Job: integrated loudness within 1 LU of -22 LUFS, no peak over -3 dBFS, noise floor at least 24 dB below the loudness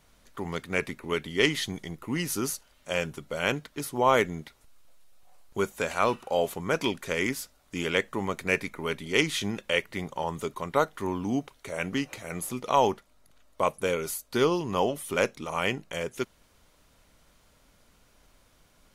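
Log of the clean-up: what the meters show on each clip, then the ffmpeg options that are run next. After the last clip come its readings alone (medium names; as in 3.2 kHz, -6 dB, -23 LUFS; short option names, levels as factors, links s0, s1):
loudness -29.0 LUFS; peak level -7.0 dBFS; loudness target -22.0 LUFS
-> -af "volume=2.24,alimiter=limit=0.708:level=0:latency=1"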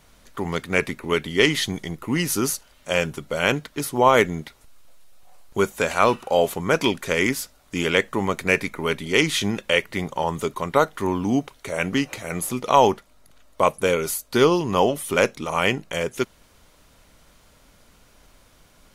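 loudness -22.5 LUFS; peak level -3.0 dBFS; noise floor -56 dBFS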